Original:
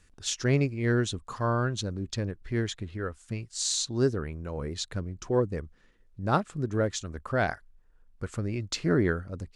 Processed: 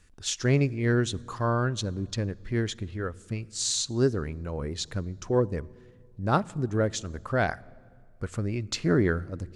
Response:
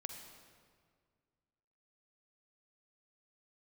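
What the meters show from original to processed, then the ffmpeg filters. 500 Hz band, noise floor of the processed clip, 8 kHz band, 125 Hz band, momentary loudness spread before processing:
+1.0 dB, -54 dBFS, +1.0 dB, +2.0 dB, 11 LU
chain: -filter_complex "[0:a]asplit=2[s0][s1];[1:a]atrim=start_sample=2205,lowshelf=f=340:g=8[s2];[s1][s2]afir=irnorm=-1:irlink=0,volume=0.168[s3];[s0][s3]amix=inputs=2:normalize=0"

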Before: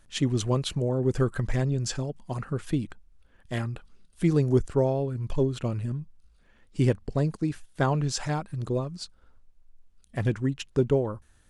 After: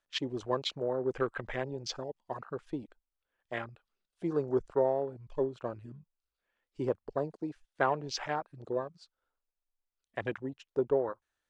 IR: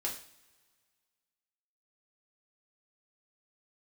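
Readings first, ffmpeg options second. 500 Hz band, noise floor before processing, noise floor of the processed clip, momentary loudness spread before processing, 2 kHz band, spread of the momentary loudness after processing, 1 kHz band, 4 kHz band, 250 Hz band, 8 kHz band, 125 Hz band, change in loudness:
-3.5 dB, -60 dBFS, under -85 dBFS, 11 LU, -1.5 dB, 11 LU, -0.5 dB, -3.0 dB, -10.0 dB, -11.5 dB, -18.0 dB, -7.0 dB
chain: -filter_complex "[0:a]acrossover=split=380 6700:gain=0.112 1 0.178[s0][s1][s2];[s0][s1][s2]amix=inputs=3:normalize=0,afwtdn=0.0112"

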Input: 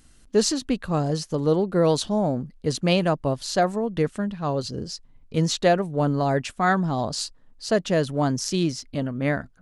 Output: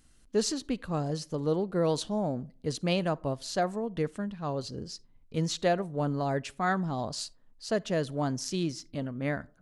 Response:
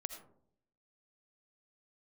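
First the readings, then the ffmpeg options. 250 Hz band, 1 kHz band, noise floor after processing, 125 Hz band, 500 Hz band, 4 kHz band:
-7.5 dB, -7.5 dB, -60 dBFS, -7.5 dB, -7.5 dB, -7.5 dB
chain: -filter_complex "[0:a]asplit=2[s0][s1];[1:a]atrim=start_sample=2205,asetrate=70560,aresample=44100[s2];[s1][s2]afir=irnorm=-1:irlink=0,volume=0.316[s3];[s0][s3]amix=inputs=2:normalize=0,volume=0.376"

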